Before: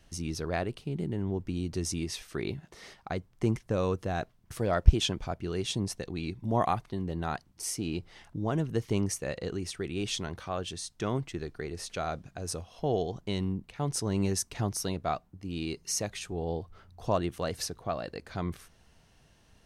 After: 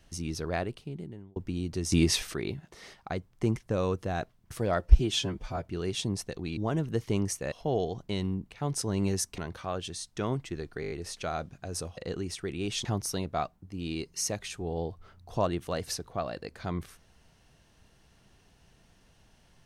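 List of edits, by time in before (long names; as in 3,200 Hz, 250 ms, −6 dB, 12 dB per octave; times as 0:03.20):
0:00.59–0:01.36: fade out
0:01.92–0:02.34: clip gain +10.5 dB
0:04.79–0:05.37: time-stretch 1.5×
0:06.28–0:08.38: remove
0:09.33–0:10.21: swap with 0:12.70–0:14.56
0:11.64: stutter 0.02 s, 6 plays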